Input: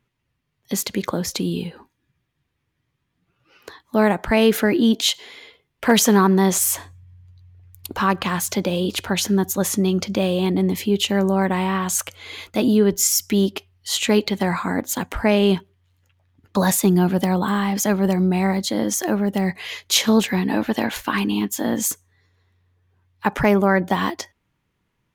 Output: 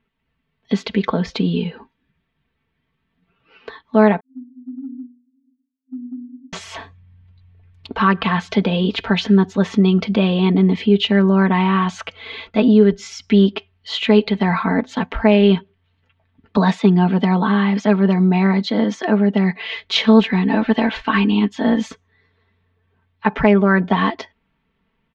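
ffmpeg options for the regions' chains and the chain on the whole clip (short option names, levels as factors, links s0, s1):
-filter_complex "[0:a]asettb=1/sr,asplit=3[s0][s1][s2];[s0]atrim=end=4.204[s3];[s1]atrim=start=4.2:end=6.53,asetpts=PTS-STARTPTS,afade=t=in:d=0.004:c=qsin,afade=t=out:st=2.326:d=0.004:c=qsin,asuperpass=centerf=260:order=20:qfactor=7.7,acompressor=threshold=0.0224:ratio=6:attack=3.2:release=140:knee=1:detection=peak[s4];[s2]atrim=start=6.526[s5];[s3][s4]acrossfade=d=0.004:c1=hsin:c2=qsin[s6];[s6][s5]acrossfade=d=0.004:c1=qsin:c2=hsin,asettb=1/sr,asplit=3[s7][s8][s9];[s7]atrim=end=16.574[s10];[s8]atrim=start=16.57:end=19.77,asetpts=PTS-STARTPTS,afade=t=in:d=0.004:c=qsin,afade=t=out:st=3.196:d=0.004:c=qsin,highpass=140,equalizer=f=13000:t=o:w=0.38:g=-8.5[s11];[s9]atrim=start=19.766[s12];[s10][s11]acrossfade=d=0.004:c1=hsin:c2=qsin[s13];[s13][s12]acrossfade=d=0.004:c1=qsin:c2=hsin,lowpass=f=3700:w=0.5412,lowpass=f=3700:w=1.3066,aecho=1:1:4.5:0.72,dynaudnorm=f=140:g=3:m=1.41"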